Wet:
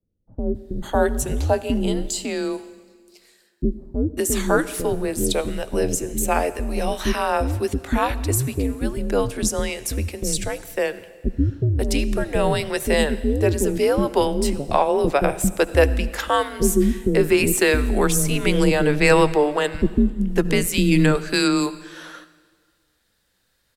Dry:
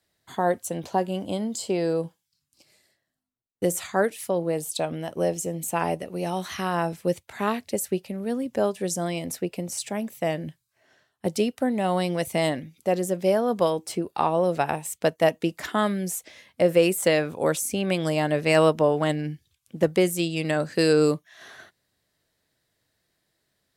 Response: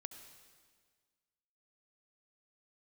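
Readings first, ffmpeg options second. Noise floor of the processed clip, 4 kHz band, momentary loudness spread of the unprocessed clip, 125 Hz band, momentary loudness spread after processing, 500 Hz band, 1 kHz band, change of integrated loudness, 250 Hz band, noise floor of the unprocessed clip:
-67 dBFS, +5.5 dB, 9 LU, +7.0 dB, 9 LU, +3.0 dB, +3.0 dB, +4.0 dB, +5.5 dB, -78 dBFS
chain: -filter_complex "[0:a]acrossover=split=470[a][b];[b]adelay=550[c];[a][c]amix=inputs=2:normalize=0,afreqshift=-140,asplit=2[d][e];[1:a]atrim=start_sample=2205[f];[e][f]afir=irnorm=-1:irlink=0,volume=0.5dB[g];[d][g]amix=inputs=2:normalize=0,volume=2.5dB"

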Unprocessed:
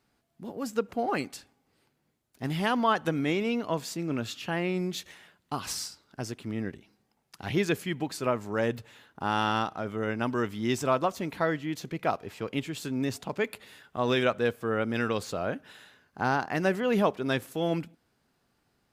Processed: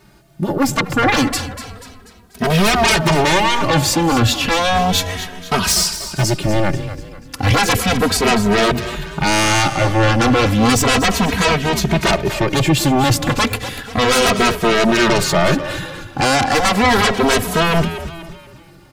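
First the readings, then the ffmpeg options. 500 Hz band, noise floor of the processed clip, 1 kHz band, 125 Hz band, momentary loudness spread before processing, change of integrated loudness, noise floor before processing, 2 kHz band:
+12.0 dB, -43 dBFS, +15.0 dB, +17.0 dB, 12 LU, +14.5 dB, -74 dBFS, +16.5 dB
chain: -filter_complex "[0:a]lowshelf=f=240:g=6.5,aeval=exprs='0.251*sin(PI/2*6.31*val(0)/0.251)':c=same,asplit=2[a][b];[b]asplit=5[c][d][e][f][g];[c]adelay=243,afreqshift=-88,volume=-12dB[h];[d]adelay=486,afreqshift=-176,volume=-18.7dB[i];[e]adelay=729,afreqshift=-264,volume=-25.5dB[j];[f]adelay=972,afreqshift=-352,volume=-32.2dB[k];[g]adelay=1215,afreqshift=-440,volume=-39dB[l];[h][i][j][k][l]amix=inputs=5:normalize=0[m];[a][m]amix=inputs=2:normalize=0,asplit=2[n][o];[o]adelay=2.8,afreqshift=-0.33[p];[n][p]amix=inputs=2:normalize=1,volume=4.5dB"

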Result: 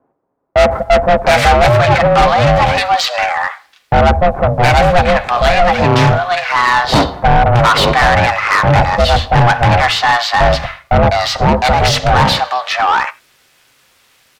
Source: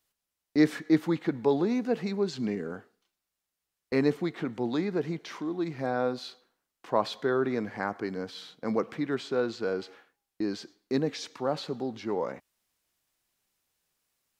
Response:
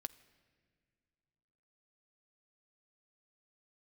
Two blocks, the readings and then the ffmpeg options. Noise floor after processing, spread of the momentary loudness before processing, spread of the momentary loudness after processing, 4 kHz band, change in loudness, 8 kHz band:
-54 dBFS, 10 LU, 5 LU, +25.5 dB, +19.0 dB, +24.0 dB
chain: -filter_complex "[0:a]aeval=exprs='val(0)*sin(2*PI*360*n/s)':c=same,acrossover=split=220[a][b];[a]acontrast=87[c];[c][b]amix=inputs=2:normalize=0,bass=f=250:g=-2,treble=f=4k:g=-6[d];[1:a]atrim=start_sample=2205,afade=t=out:st=0.15:d=0.01,atrim=end_sample=7056[e];[d][e]afir=irnorm=-1:irlink=0,asubboost=boost=4:cutoff=110,acrossover=split=880[f][g];[g]adelay=710[h];[f][h]amix=inputs=2:normalize=0,asplit=2[i][j];[j]highpass=f=720:p=1,volume=38dB,asoftclip=type=tanh:threshold=-8.5dB[k];[i][k]amix=inputs=2:normalize=0,lowpass=f=5.5k:p=1,volume=-6dB,volume=8dB"

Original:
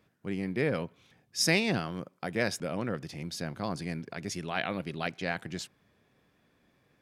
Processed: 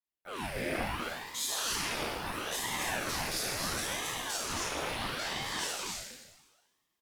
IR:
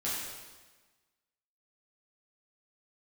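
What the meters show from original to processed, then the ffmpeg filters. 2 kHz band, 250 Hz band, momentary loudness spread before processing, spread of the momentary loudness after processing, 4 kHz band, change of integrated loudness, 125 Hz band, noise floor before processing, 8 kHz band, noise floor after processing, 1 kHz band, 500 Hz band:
-1.0 dB, -8.5 dB, 12 LU, 6 LU, +3.0 dB, -1.0 dB, -8.5 dB, -70 dBFS, +5.0 dB, -81 dBFS, +2.5 dB, -5.5 dB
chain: -filter_complex "[0:a]highpass=440,aemphasis=mode=production:type=75fm,agate=range=-28dB:threshold=-57dB:ratio=16:detection=peak,acompressor=threshold=-41dB:ratio=6,alimiter=level_in=10dB:limit=-24dB:level=0:latency=1:release=192,volume=-10dB,dynaudnorm=f=130:g=5:m=12.5dB,asoftclip=type=hard:threshold=-25.5dB,asplit=2[a][b];[b]adelay=35,volume=-11dB[c];[a][c]amix=inputs=2:normalize=0,aecho=1:1:55.39|166.2|271.1:0.316|0.355|0.708[d];[1:a]atrim=start_sample=2205[e];[d][e]afir=irnorm=-1:irlink=0,aeval=exprs='val(0)*sin(2*PI*810*n/s+810*0.85/0.73*sin(2*PI*0.73*n/s))':c=same,volume=-2.5dB"

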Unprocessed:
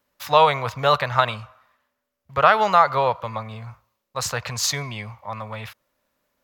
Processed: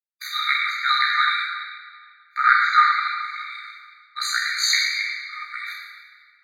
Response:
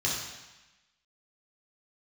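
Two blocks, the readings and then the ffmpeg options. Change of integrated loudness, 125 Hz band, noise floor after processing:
0.0 dB, under -40 dB, -56 dBFS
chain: -filter_complex "[0:a]bandreject=f=1.3k:w=11,agate=range=-36dB:threshold=-46dB:ratio=16:detection=peak,asplit=2[a][b];[b]acompressor=threshold=-27dB:ratio=12,volume=2dB[c];[a][c]amix=inputs=2:normalize=0,adynamicequalizer=threshold=0.0355:dfrequency=1900:dqfactor=0.79:tfrequency=1900:tqfactor=0.79:attack=5:release=100:ratio=0.375:range=2.5:mode=boostabove:tftype=bell,aeval=exprs='val(0)+0.00447*(sin(2*PI*60*n/s)+sin(2*PI*2*60*n/s)/2+sin(2*PI*3*60*n/s)/3+sin(2*PI*4*60*n/s)/4+sin(2*PI*5*60*n/s)/5)':c=same,equalizer=f=1k:w=6:g=-2.5,aeval=exprs='val(0)*sin(2*PI*31*n/s)':c=same[d];[1:a]atrim=start_sample=2205,asetrate=30870,aresample=44100[e];[d][e]afir=irnorm=-1:irlink=0,afftfilt=real='re*eq(mod(floor(b*sr/1024/1200),2),1)':imag='im*eq(mod(floor(b*sr/1024/1200),2),1)':win_size=1024:overlap=0.75,volume=-8dB"

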